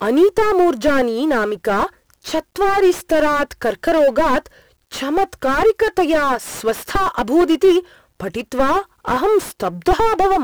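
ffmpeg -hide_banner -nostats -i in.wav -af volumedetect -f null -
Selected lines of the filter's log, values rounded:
mean_volume: -16.9 dB
max_volume: -2.1 dB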